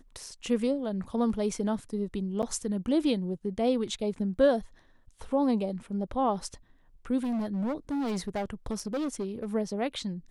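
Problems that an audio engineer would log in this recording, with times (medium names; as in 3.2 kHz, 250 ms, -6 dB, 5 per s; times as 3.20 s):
2.42–2.43 s: dropout 8.3 ms
7.23–9.46 s: clipped -27.5 dBFS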